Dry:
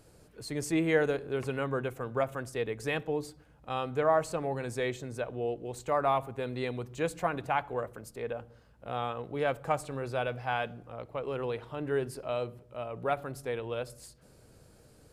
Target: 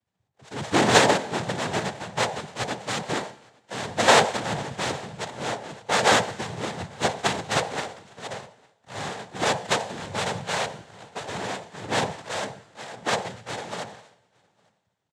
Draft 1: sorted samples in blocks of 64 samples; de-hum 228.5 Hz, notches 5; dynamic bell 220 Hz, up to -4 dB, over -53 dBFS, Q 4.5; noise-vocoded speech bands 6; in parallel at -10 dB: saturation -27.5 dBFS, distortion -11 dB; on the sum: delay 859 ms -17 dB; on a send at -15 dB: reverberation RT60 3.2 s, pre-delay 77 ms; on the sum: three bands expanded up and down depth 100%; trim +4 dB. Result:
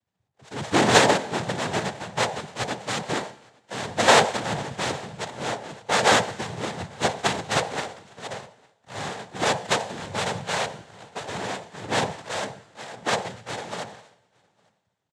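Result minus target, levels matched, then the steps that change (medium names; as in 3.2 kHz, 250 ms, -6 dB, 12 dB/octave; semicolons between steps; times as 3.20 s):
saturation: distortion -5 dB
change: saturation -34 dBFS, distortion -7 dB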